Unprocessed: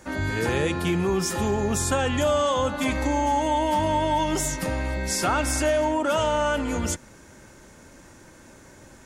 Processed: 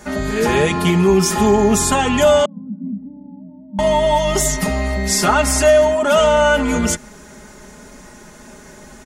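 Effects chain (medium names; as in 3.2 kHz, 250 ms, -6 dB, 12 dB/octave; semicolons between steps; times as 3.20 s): 2.45–3.79 s: Butterworth band-pass 200 Hz, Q 3.1; comb 4.8 ms, depth 92%; trim +6.5 dB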